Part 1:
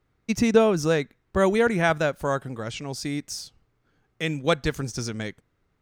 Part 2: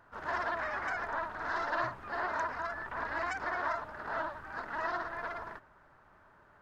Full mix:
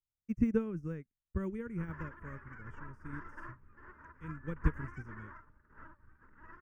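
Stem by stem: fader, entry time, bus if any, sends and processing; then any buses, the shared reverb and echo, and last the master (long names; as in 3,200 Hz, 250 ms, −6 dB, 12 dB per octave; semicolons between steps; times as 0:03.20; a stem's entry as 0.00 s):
−10.5 dB, 0.00 s, no send, de-essing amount 80%; high-shelf EQ 8,700 Hz +5.5 dB
+2.0 dB, 1.65 s, no send, no processing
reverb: not used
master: spectral tilt −3.5 dB per octave; phaser with its sweep stopped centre 1,700 Hz, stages 4; expander for the loud parts 2.5 to 1, over −43 dBFS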